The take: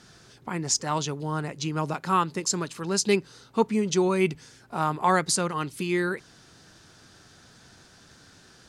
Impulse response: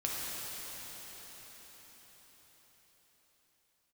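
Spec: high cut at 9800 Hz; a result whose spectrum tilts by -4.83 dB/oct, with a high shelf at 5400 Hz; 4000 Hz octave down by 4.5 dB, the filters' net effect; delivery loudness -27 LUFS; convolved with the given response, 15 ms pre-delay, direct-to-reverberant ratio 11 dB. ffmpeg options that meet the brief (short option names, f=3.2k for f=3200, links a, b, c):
-filter_complex "[0:a]lowpass=9.8k,equalizer=f=4k:t=o:g=-3,highshelf=f=5.4k:g=-5.5,asplit=2[a][b];[1:a]atrim=start_sample=2205,adelay=15[c];[b][c]afir=irnorm=-1:irlink=0,volume=-17dB[d];[a][d]amix=inputs=2:normalize=0,volume=0.5dB"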